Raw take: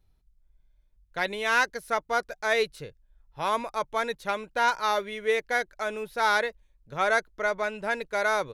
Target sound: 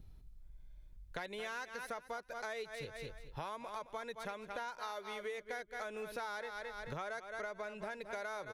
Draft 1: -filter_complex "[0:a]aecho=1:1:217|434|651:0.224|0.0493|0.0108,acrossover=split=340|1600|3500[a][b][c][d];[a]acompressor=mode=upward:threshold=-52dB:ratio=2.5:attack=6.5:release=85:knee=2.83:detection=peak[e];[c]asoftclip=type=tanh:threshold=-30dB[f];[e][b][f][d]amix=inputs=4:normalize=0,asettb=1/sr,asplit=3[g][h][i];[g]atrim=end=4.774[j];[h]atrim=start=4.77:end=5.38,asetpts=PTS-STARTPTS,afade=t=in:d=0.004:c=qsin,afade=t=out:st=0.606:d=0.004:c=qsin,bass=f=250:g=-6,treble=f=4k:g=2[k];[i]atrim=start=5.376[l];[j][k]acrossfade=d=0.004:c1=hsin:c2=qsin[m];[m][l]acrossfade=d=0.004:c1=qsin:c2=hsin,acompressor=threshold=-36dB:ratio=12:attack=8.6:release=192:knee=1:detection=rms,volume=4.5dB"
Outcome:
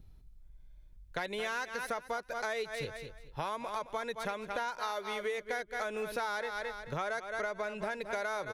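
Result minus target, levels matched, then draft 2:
compressor: peak gain reduction -7 dB
-filter_complex "[0:a]aecho=1:1:217|434|651:0.224|0.0493|0.0108,acrossover=split=340|1600|3500[a][b][c][d];[a]acompressor=mode=upward:threshold=-52dB:ratio=2.5:attack=6.5:release=85:knee=2.83:detection=peak[e];[c]asoftclip=type=tanh:threshold=-30dB[f];[e][b][f][d]amix=inputs=4:normalize=0,asettb=1/sr,asplit=3[g][h][i];[g]atrim=end=4.774[j];[h]atrim=start=4.77:end=5.38,asetpts=PTS-STARTPTS,afade=t=in:d=0.004:c=qsin,afade=t=out:st=0.606:d=0.004:c=qsin,bass=f=250:g=-6,treble=f=4k:g=2[k];[i]atrim=start=5.376[l];[j][k]acrossfade=d=0.004:c1=hsin:c2=qsin[m];[m][l]acrossfade=d=0.004:c1=qsin:c2=hsin,acompressor=threshold=-43.5dB:ratio=12:attack=8.6:release=192:knee=1:detection=rms,volume=4.5dB"

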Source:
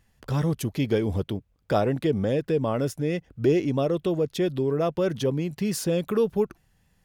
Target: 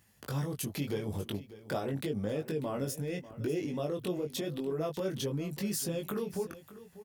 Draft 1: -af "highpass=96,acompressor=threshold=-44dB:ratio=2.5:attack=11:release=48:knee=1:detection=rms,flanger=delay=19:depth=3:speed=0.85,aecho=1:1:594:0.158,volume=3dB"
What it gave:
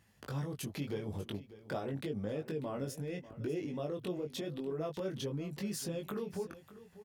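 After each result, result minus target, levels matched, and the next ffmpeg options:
compressor: peak gain reduction +4 dB; 8000 Hz band -3.0 dB
-af "highpass=96,acompressor=threshold=-37.5dB:ratio=2.5:attack=11:release=48:knee=1:detection=rms,flanger=delay=19:depth=3:speed=0.85,aecho=1:1:594:0.158,volume=3dB"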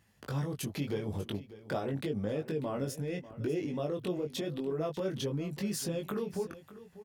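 8000 Hz band -3.0 dB
-af "highpass=96,highshelf=f=7.3k:g=11.5,acompressor=threshold=-37.5dB:ratio=2.5:attack=11:release=48:knee=1:detection=rms,flanger=delay=19:depth=3:speed=0.85,aecho=1:1:594:0.158,volume=3dB"

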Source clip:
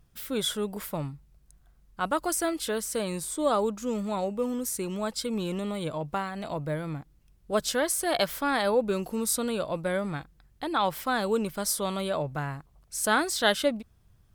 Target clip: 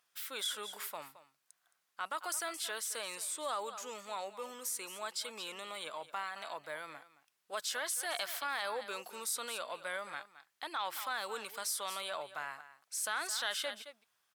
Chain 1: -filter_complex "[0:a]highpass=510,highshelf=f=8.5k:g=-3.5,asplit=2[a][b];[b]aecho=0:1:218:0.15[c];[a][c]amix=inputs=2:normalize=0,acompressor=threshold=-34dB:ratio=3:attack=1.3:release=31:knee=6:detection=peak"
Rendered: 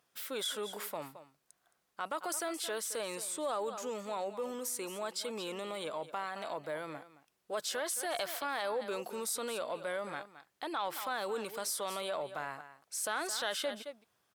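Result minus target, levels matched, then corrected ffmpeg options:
500 Hz band +5.5 dB
-filter_complex "[0:a]highpass=1.1k,highshelf=f=8.5k:g=-3.5,asplit=2[a][b];[b]aecho=0:1:218:0.15[c];[a][c]amix=inputs=2:normalize=0,acompressor=threshold=-34dB:ratio=3:attack=1.3:release=31:knee=6:detection=peak"

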